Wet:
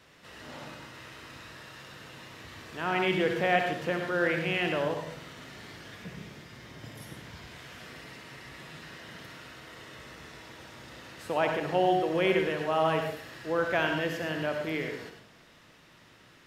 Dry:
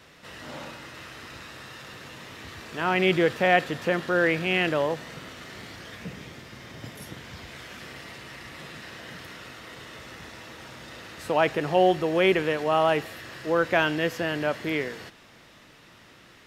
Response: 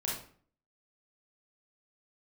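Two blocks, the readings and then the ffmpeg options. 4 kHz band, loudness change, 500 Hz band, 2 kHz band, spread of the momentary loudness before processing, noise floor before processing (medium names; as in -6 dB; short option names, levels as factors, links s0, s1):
-4.5 dB, -4.5 dB, -4.5 dB, -4.5 dB, 20 LU, -53 dBFS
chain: -filter_complex "[0:a]asplit=2[s0][s1];[1:a]atrim=start_sample=2205,adelay=63[s2];[s1][s2]afir=irnorm=-1:irlink=0,volume=0.422[s3];[s0][s3]amix=inputs=2:normalize=0,volume=0.501"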